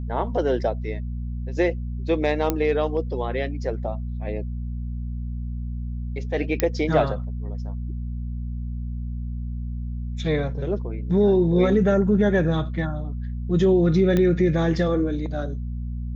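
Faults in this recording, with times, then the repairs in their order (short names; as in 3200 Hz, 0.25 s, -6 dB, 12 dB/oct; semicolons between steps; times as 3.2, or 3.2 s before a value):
hum 60 Hz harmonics 4 -29 dBFS
2.5 pop -8 dBFS
6.6 pop -5 dBFS
14.17 pop -11 dBFS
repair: de-click; de-hum 60 Hz, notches 4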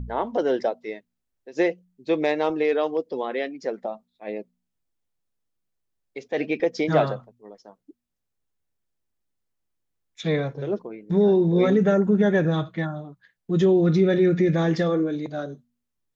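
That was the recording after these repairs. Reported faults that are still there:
2.5 pop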